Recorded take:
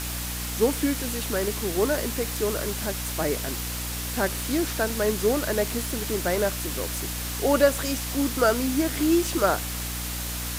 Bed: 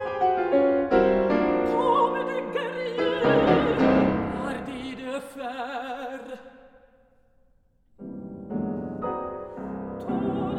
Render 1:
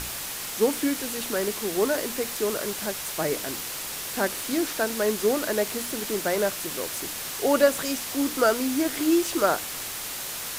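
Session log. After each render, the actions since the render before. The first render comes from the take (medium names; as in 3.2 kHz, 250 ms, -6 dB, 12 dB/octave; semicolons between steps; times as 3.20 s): hum notches 60/120/180/240/300 Hz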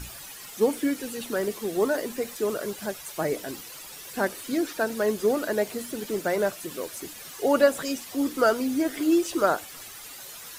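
noise reduction 12 dB, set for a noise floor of -34 dBFS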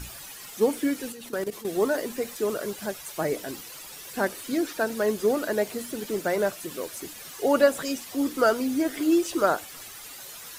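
1.12–1.67 s: level held to a coarse grid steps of 14 dB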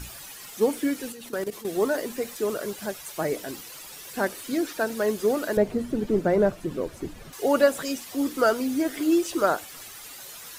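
5.57–7.33 s: tilt EQ -4 dB/octave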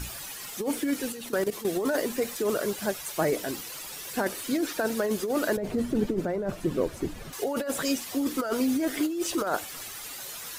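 compressor with a negative ratio -26 dBFS, ratio -1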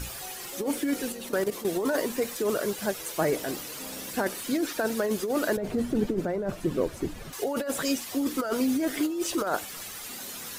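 add bed -24 dB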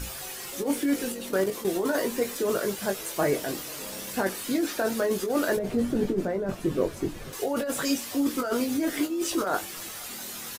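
doubling 21 ms -6 dB; delay 492 ms -24 dB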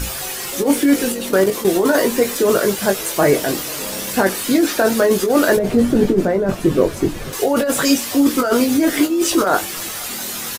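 trim +11.5 dB; peak limiter -3 dBFS, peak gain reduction 1.5 dB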